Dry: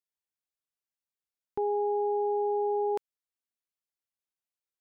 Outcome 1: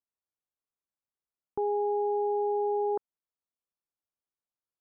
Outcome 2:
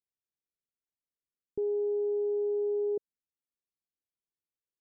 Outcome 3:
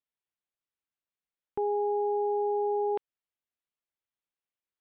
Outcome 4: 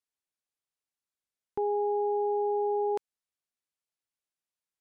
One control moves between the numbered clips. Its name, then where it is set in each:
Butterworth low-pass, frequency: 1,400, 510, 3,700, 12,000 Hertz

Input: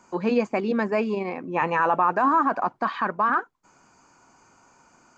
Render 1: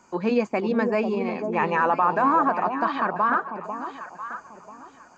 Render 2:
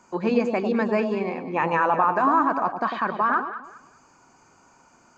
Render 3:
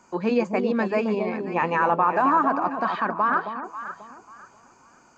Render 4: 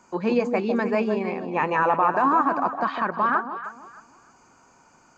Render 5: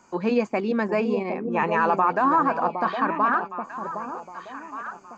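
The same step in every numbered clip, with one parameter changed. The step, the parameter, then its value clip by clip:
delay that swaps between a low-pass and a high-pass, delay time: 495, 100, 269, 155, 763 milliseconds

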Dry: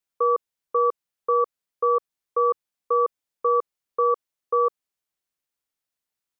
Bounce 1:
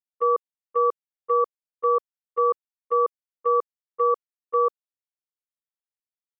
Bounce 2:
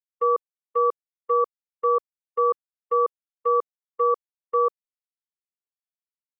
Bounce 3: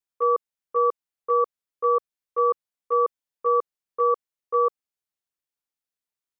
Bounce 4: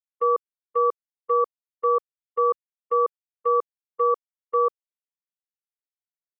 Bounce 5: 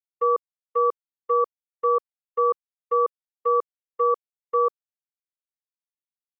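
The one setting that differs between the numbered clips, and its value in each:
noise gate, range: −20, −46, −6, −33, −59 decibels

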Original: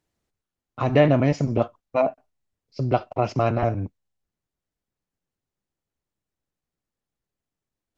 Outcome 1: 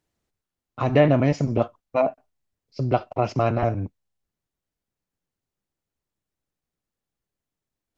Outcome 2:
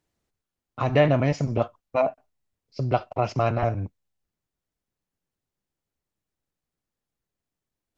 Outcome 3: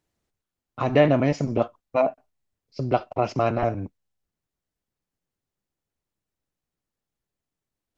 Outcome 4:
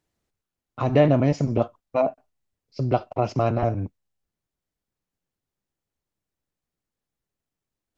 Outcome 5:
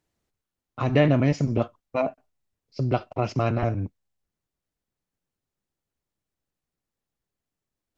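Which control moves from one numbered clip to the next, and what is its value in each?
dynamic equaliser, frequency: 5,600, 290, 100, 2,000, 730 Hertz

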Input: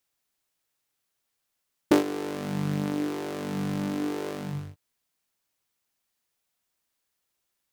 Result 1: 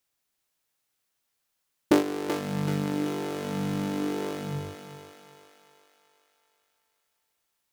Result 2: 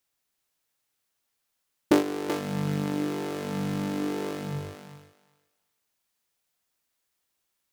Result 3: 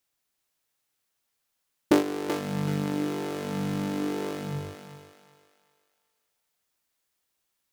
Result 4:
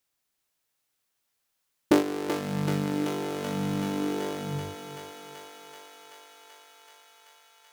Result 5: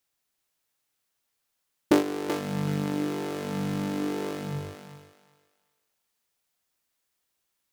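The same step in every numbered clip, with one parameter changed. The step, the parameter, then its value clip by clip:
feedback echo with a high-pass in the loop, feedback: 55, 15, 35, 83, 23%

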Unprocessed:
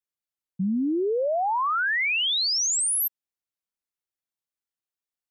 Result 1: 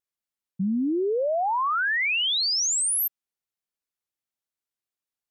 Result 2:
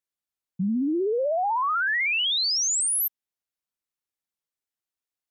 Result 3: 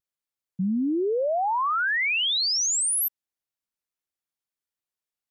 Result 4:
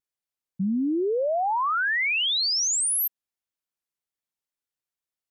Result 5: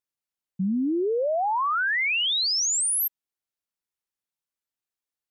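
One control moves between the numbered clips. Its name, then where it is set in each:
pitch vibrato, speed: 3.4, 16, 0.94, 1.8, 5.7 Hertz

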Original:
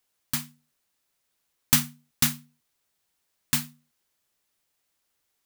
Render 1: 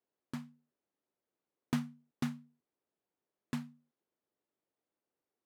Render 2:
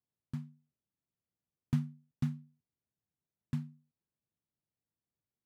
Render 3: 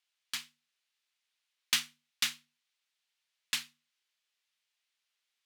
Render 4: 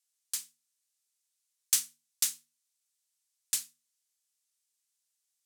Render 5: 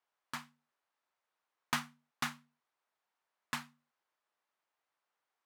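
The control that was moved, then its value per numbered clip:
resonant band-pass, frequency: 360, 130, 3,000, 7,800, 1,000 Hertz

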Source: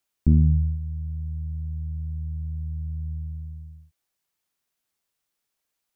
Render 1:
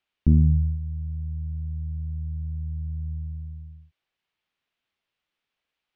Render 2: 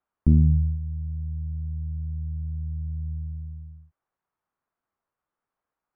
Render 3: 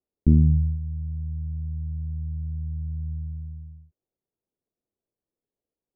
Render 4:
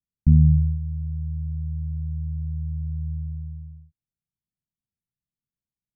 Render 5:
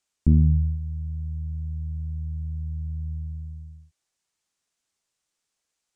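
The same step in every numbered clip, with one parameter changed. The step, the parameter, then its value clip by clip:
low-pass with resonance, frequency: 3,000, 1,200, 440, 160, 7,600 Hertz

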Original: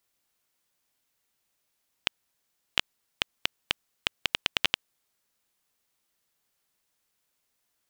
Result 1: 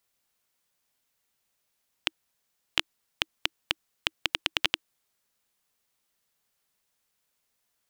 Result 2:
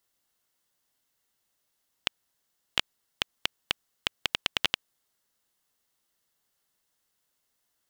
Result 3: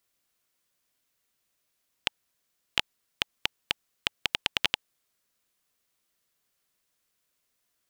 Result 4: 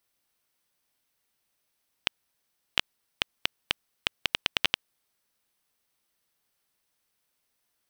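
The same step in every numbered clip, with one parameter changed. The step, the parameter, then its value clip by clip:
notch filter, centre frequency: 320, 2,400, 850, 7,000 Hertz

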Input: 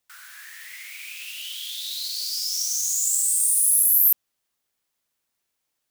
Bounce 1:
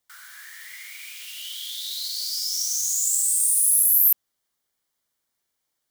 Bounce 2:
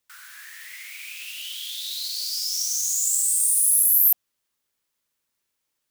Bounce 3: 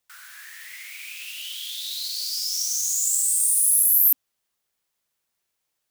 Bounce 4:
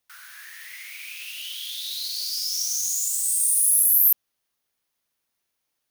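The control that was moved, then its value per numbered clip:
notch filter, centre frequency: 2,600, 730, 270, 7,600 Hertz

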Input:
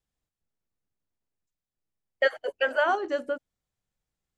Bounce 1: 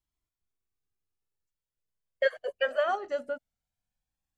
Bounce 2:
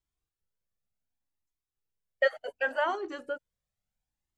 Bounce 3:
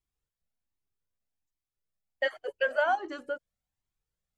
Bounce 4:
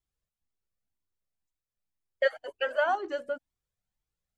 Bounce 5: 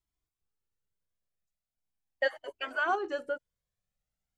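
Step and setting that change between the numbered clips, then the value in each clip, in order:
flanger whose copies keep moving one way, speed: 0.2, 0.69, 1.3, 2, 0.4 Hertz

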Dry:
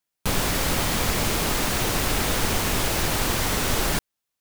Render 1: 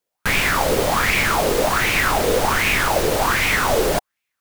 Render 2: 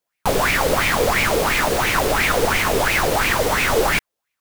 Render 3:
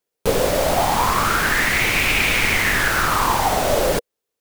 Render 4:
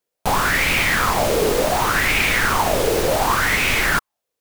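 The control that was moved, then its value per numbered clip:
auto-filter bell, speed: 1.3, 2.9, 0.23, 0.68 Hertz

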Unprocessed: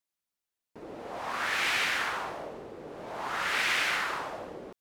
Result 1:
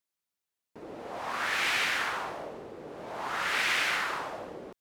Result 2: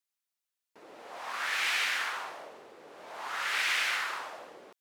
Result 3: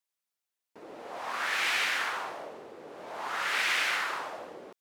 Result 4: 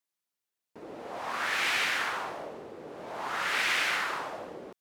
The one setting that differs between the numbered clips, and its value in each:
high-pass filter, corner frequency: 44, 1,200, 440, 130 Hertz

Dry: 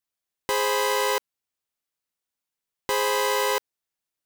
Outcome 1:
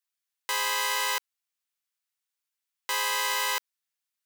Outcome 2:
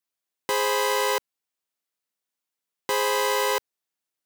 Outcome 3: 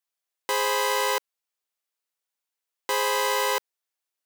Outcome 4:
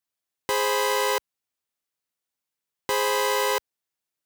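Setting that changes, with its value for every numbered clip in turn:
high-pass filter, corner frequency: 1,200, 150, 430, 56 Hertz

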